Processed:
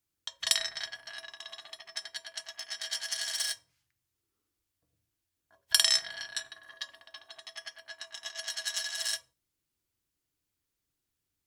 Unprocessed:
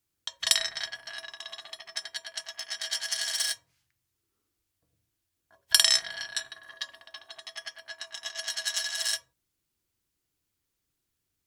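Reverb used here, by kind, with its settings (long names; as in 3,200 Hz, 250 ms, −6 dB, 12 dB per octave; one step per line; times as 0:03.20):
feedback delay network reverb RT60 0.32 s, high-frequency decay 0.95×, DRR 19.5 dB
level −3.5 dB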